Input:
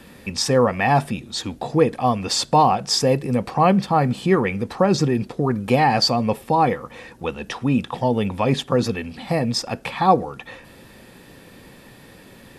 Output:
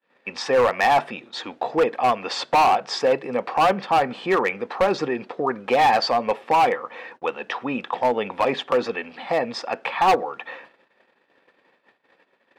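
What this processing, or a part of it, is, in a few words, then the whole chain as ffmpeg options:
walkie-talkie: -af "highpass=530,lowpass=2.5k,asoftclip=type=hard:threshold=-17.5dB,agate=range=-40dB:threshold=-48dB:ratio=16:detection=peak,volume=4.5dB"

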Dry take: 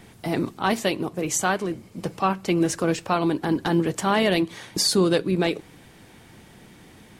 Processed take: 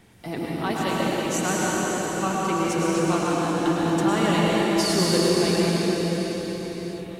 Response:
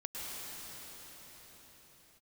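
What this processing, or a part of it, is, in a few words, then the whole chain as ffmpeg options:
cathedral: -filter_complex "[1:a]atrim=start_sample=2205[a];[0:a][a]afir=irnorm=-1:irlink=0,volume=-1.5dB"

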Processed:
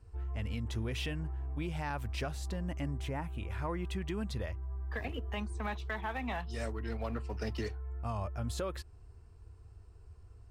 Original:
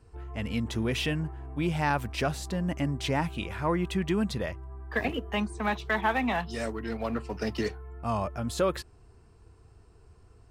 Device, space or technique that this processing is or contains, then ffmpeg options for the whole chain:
car stereo with a boomy subwoofer: -filter_complex "[0:a]lowshelf=f=120:t=q:w=1.5:g=7.5,alimiter=limit=-20.5dB:level=0:latency=1:release=254,asettb=1/sr,asplit=3[a][b][c];[a]atrim=end=2.984[d];[b]atrim=start=2.98:end=3.5,asetpts=PTS-STARTPTS,afade=t=in:d=0.004:c=qsin,afade=t=out:st=0.516:d=0.004:c=qsin,equalizer=f=4.6k:w=0.98:g=-10.5[e];[c]atrim=start=3.496[f];[d][e]acrossfade=d=0.004:c1=hsin:c2=qsin[g];[g][f]acrossfade=d=0.004:c1=qsin:c2=hsin,volume=-6dB"

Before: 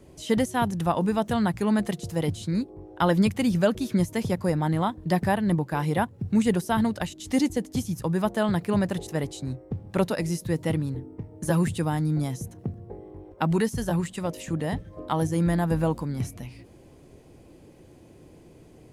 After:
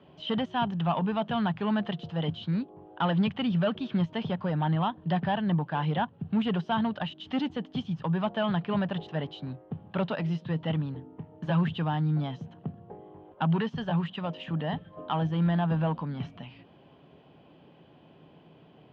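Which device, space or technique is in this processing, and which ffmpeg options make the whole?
overdrive pedal into a guitar cabinet: -filter_complex "[0:a]asplit=2[a][b];[b]highpass=f=720:p=1,volume=17dB,asoftclip=type=tanh:threshold=-10dB[c];[a][c]amix=inputs=2:normalize=0,lowpass=f=1.3k:p=1,volume=-6dB,highpass=86,equalizer=f=100:t=q:w=4:g=-3,equalizer=f=160:t=q:w=4:g=7,equalizer=f=340:t=q:w=4:g=-8,equalizer=f=500:t=q:w=4:g=-7,equalizer=f=2.1k:t=q:w=4:g=-7,equalizer=f=3.1k:t=q:w=4:g=10,lowpass=f=3.7k:w=0.5412,lowpass=f=3.7k:w=1.3066,volume=-5.5dB"

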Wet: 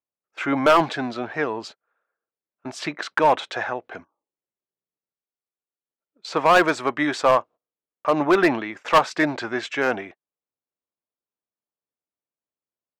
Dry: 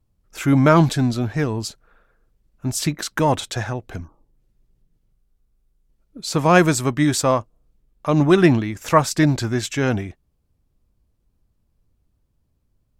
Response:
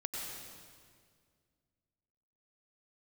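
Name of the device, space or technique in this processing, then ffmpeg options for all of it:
walkie-talkie: -af "highpass=520,lowpass=2.5k,asoftclip=type=hard:threshold=-14dB,agate=range=-19dB:threshold=-44dB:ratio=16:detection=peak,volume=4.5dB"

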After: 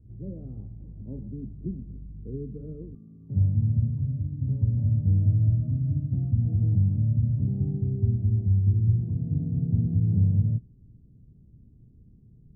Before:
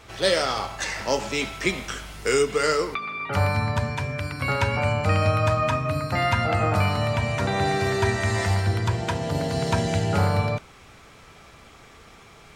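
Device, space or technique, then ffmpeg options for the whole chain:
the neighbour's flat through the wall: -af "lowpass=f=240:w=0.5412,lowpass=f=240:w=1.3066,equalizer=f=120:t=o:w=0.44:g=5"

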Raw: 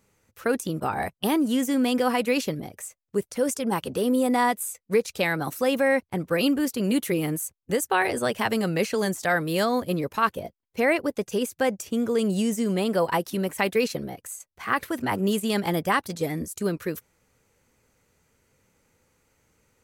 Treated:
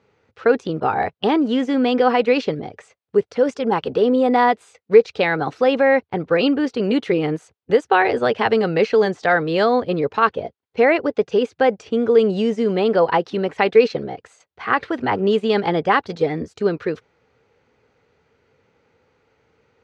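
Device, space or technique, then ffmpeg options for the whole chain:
guitar cabinet: -af "highpass=78,equalizer=f=190:t=q:w=4:g=-3,equalizer=f=440:t=q:w=4:g=8,equalizer=f=780:t=q:w=4:g=5,equalizer=f=1.4k:t=q:w=4:g=3,lowpass=f=4.4k:w=0.5412,lowpass=f=4.4k:w=1.3066,volume=4dB"

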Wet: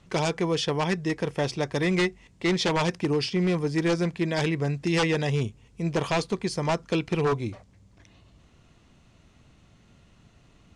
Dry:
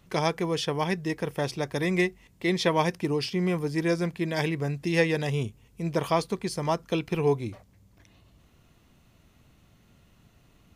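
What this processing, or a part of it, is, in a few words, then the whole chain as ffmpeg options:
synthesiser wavefolder: -af "aeval=exprs='0.1*(abs(mod(val(0)/0.1+3,4)-2)-1)':c=same,lowpass=f=8.6k:w=0.5412,lowpass=f=8.6k:w=1.3066,volume=2.5dB"

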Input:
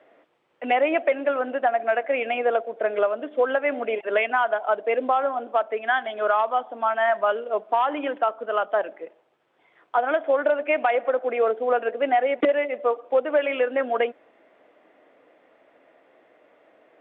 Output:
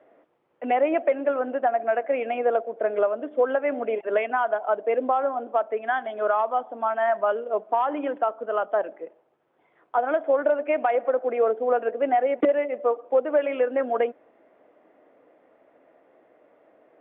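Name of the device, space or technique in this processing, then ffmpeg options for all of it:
through cloth: -af "highshelf=f=2.1k:g=-16,volume=1dB"

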